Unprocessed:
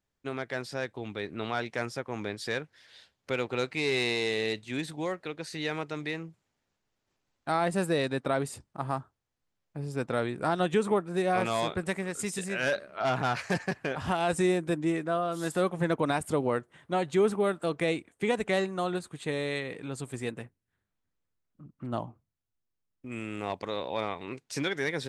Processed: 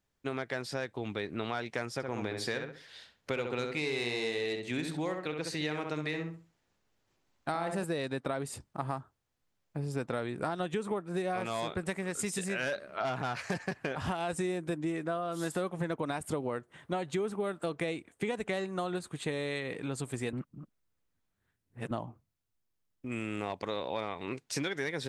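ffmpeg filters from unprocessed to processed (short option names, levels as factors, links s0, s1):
-filter_complex "[0:a]asettb=1/sr,asplit=3[s0][s1][s2];[s0]atrim=end=1.934[s3];[s1]atrim=start=1.93:end=7.84,asetpts=PTS-STARTPTS,afade=t=in:d=0.004:c=qsin,afade=t=out:st=5.906:d=0.004:c=qsin,asplit=2[s4][s5];[s5]adelay=66,lowpass=f=2500:p=1,volume=0.562,asplit=2[s6][s7];[s7]adelay=66,lowpass=f=2500:p=1,volume=0.28,asplit=2[s8][s9];[s9]adelay=66,lowpass=f=2500:p=1,volume=0.28,asplit=2[s10][s11];[s11]adelay=66,lowpass=f=2500:p=1,volume=0.28[s12];[s4][s6][s8][s10][s12]amix=inputs=5:normalize=0,atrim=end_sample=260631[s13];[s2]atrim=start=7.836[s14];[s3][s13]acrossfade=d=0.004:c1=hsin:c2=qsin[s15];[s15][s14]acrossfade=d=0.004:c1=qsin:c2=hsin,asplit=3[s16][s17][s18];[s16]atrim=end=20.332[s19];[s17]atrim=start=20.328:end=21.912,asetpts=PTS-STARTPTS,areverse[s20];[s18]atrim=start=21.908[s21];[s19][s20]acrossfade=d=0.004:c1=hsin:c2=hsin[s22];[s22][s21]acrossfade=d=0.004:c1=hsin:c2=hsin,acompressor=threshold=0.0224:ratio=6,volume=1.33"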